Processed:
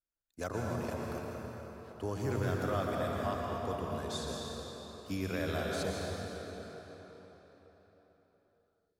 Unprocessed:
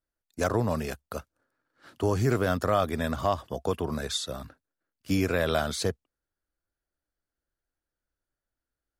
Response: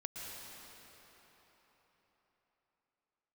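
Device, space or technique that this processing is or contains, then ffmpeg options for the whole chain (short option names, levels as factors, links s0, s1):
cathedral: -filter_complex "[1:a]atrim=start_sample=2205[s0];[0:a][s0]afir=irnorm=-1:irlink=0,volume=0.447"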